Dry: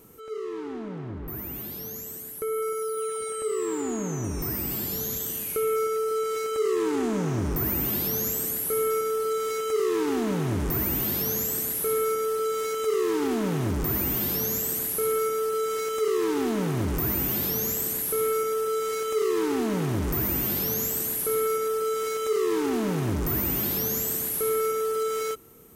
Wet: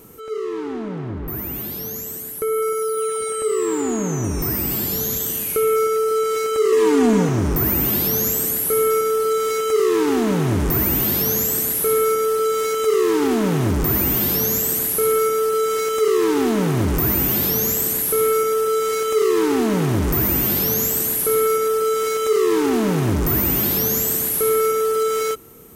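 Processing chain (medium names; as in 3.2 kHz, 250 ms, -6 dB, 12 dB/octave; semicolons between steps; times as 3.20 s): 6.72–7.29 s: comb 4.2 ms, depth 83%; trim +7.5 dB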